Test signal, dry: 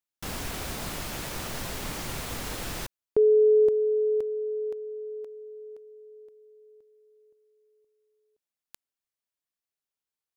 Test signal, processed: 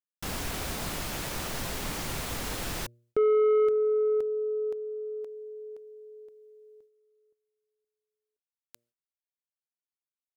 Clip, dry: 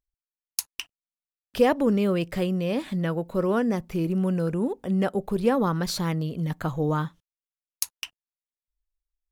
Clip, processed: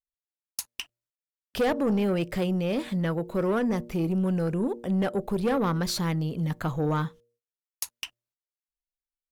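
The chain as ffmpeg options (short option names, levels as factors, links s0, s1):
-af "bandreject=f=118.3:t=h:w=4,bandreject=f=236.6:t=h:w=4,bandreject=f=354.9:t=h:w=4,bandreject=f=473.2:t=h:w=4,bandreject=f=591.5:t=h:w=4,agate=range=0.126:threshold=0.00158:ratio=3:release=168:detection=rms,asoftclip=type=tanh:threshold=0.0944,volume=1.12"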